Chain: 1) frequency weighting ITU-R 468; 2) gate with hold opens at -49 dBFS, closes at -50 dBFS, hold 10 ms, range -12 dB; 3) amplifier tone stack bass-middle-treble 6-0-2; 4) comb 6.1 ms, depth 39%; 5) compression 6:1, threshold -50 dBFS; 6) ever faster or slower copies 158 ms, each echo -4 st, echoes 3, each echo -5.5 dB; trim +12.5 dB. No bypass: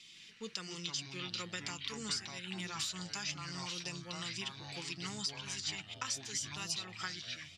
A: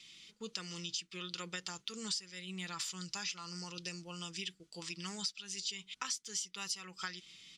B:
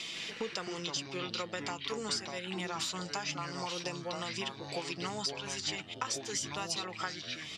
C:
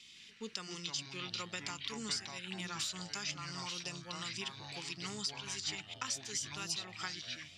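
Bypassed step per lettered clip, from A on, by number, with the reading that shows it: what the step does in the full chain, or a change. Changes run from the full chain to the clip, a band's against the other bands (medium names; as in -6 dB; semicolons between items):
6, 125 Hz band -2.0 dB; 3, 500 Hz band +8.5 dB; 4, 125 Hz band -1.5 dB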